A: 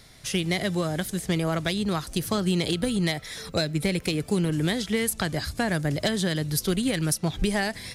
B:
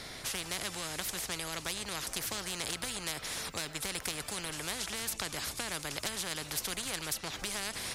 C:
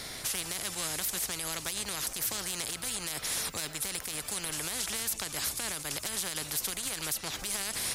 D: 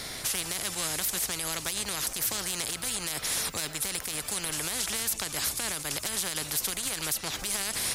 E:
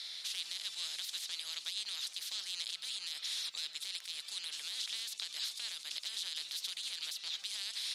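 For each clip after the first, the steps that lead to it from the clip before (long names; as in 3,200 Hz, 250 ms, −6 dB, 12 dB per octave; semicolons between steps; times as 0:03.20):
high-shelf EQ 6,100 Hz −7 dB; every bin compressed towards the loudest bin 4 to 1; level −2 dB
high-shelf EQ 7,400 Hz +11 dB; brickwall limiter −22 dBFS, peak gain reduction 11.5 dB; level +1.5 dB
surface crackle 53 per second −48 dBFS; level +3 dB
resonant band-pass 3,800 Hz, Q 3.3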